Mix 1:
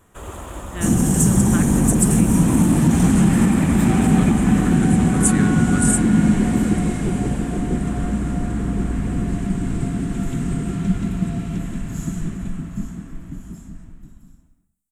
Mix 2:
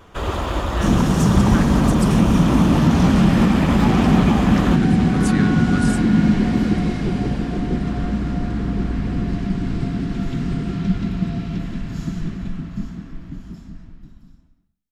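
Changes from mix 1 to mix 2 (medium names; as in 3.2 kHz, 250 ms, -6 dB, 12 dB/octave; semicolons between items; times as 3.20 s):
first sound +10.5 dB; master: add resonant high shelf 6.3 kHz -10 dB, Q 3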